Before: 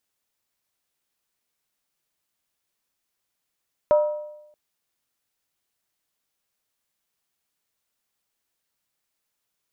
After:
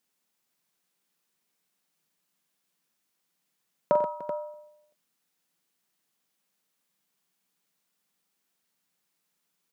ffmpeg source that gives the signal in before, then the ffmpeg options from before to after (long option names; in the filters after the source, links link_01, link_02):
-f lavfi -i "aevalsrc='0.251*pow(10,-3*t/0.9)*sin(2*PI*600*t)+0.0708*pow(10,-3*t/0.713)*sin(2*PI*956.4*t)+0.02*pow(10,-3*t/0.616)*sin(2*PI*1281.6*t)+0.00562*pow(10,-3*t/0.594)*sin(2*PI*1377.6*t)+0.00158*pow(10,-3*t/0.553)*sin(2*PI*1591.8*t)':duration=0.63:sample_rate=44100"
-filter_complex "[0:a]lowshelf=frequency=120:width_type=q:width=3:gain=-12,bandreject=frequency=610:width=19,asplit=2[link_01][link_02];[link_02]aecho=0:1:44|95|131|296|383:0.335|0.2|0.299|0.133|0.282[link_03];[link_01][link_03]amix=inputs=2:normalize=0"